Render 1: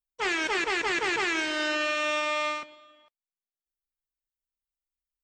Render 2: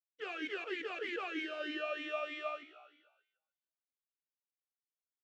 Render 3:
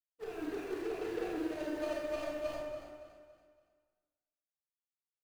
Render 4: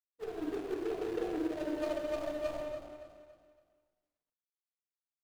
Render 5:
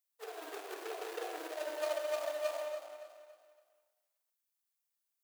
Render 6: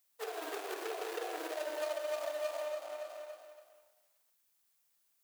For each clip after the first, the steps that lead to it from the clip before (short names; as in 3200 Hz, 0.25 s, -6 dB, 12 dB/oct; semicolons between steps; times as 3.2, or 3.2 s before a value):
frequency-shifting echo 0.147 s, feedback 51%, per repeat +65 Hz, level -15 dB; vowel sweep a-i 3.2 Hz; gain -1 dB
median filter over 41 samples; feedback echo 0.282 s, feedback 37%, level -11 dB; reverb RT60 1.2 s, pre-delay 23 ms, DRR -3.5 dB; gain +1 dB
median filter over 25 samples; gain +2.5 dB
HPF 560 Hz 24 dB/oct; high shelf 7000 Hz +11 dB; gain +2 dB
compressor 2.5:1, threshold -51 dBFS, peak gain reduction 13.5 dB; gain +10.5 dB